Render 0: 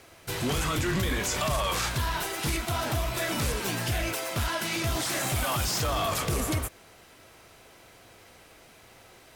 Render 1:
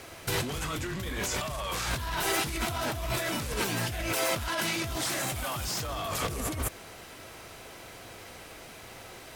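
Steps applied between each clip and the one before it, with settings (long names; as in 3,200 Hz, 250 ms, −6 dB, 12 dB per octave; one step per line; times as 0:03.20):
compressor whose output falls as the input rises −34 dBFS, ratio −1
level +2 dB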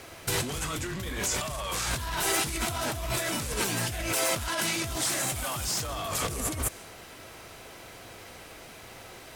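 dynamic equaliser 8,400 Hz, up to +6 dB, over −48 dBFS, Q 0.92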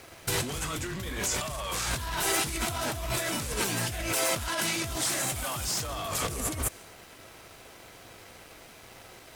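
dead-zone distortion −53.5 dBFS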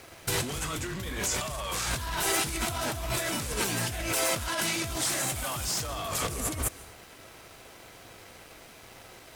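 convolution reverb RT60 0.70 s, pre-delay 123 ms, DRR 20 dB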